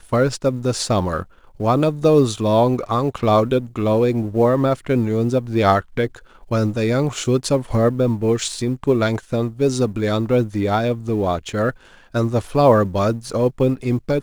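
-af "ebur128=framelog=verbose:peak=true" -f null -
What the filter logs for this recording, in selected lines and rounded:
Integrated loudness:
  I:         -19.3 LUFS
  Threshold: -29.4 LUFS
Loudness range:
  LRA:         2.5 LU
  Threshold: -39.4 LUFS
  LRA low:   -20.5 LUFS
  LRA high:  -18.0 LUFS
True peak:
  Peak:       -2.2 dBFS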